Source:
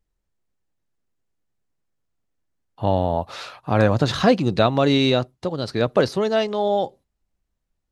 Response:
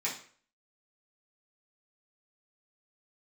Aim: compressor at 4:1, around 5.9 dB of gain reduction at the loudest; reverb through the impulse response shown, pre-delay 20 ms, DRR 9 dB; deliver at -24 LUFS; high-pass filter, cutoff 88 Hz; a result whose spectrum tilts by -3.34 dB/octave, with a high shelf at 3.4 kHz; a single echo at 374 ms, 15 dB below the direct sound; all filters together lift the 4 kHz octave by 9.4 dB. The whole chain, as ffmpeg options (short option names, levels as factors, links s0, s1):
-filter_complex "[0:a]highpass=88,highshelf=f=3400:g=4.5,equalizer=f=4000:t=o:g=7.5,acompressor=threshold=0.141:ratio=4,aecho=1:1:374:0.178,asplit=2[s0][s1];[1:a]atrim=start_sample=2205,adelay=20[s2];[s1][s2]afir=irnorm=-1:irlink=0,volume=0.188[s3];[s0][s3]amix=inputs=2:normalize=0,volume=0.841"